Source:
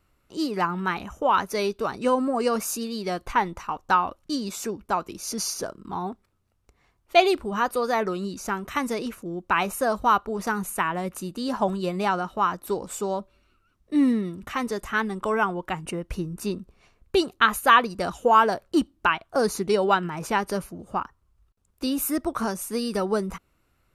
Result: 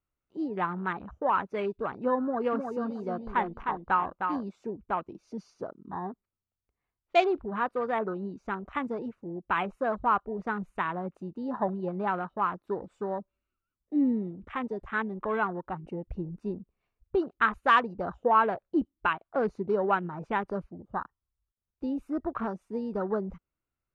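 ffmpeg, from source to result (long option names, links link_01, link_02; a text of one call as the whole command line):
ffmpeg -i in.wav -filter_complex "[0:a]asettb=1/sr,asplit=3[link_01][link_02][link_03];[link_01]atrim=end=2.224[link_04];[link_02]atrim=start=2.22:end=4.48,asetpts=PTS-STARTPTS,afade=type=in:duration=0.004:curve=qsin,afade=type=out:start_time=2.256:duration=0.004:curve=qsin,asplit=2[link_05][link_06];[link_06]adelay=308,lowpass=frequency=4400:poles=1,volume=-5dB,asplit=2[link_07][link_08];[link_08]adelay=308,lowpass=frequency=4400:poles=1,volume=0.26,asplit=2[link_09][link_10];[link_10]adelay=308,lowpass=frequency=4400:poles=1,volume=0.26[link_11];[link_05][link_07][link_09][link_11]amix=inputs=4:normalize=0,atrim=end_sample=99666[link_12];[link_03]atrim=start=4.476[link_13];[link_04][link_12]acrossfade=duration=0.004:curve1=hsin:curve2=qsin[link_14];[link_14][link_13]acrossfade=duration=0.004:curve1=qsin:curve2=hsin,lowpass=3000,afwtdn=0.0224,volume=-5dB" out.wav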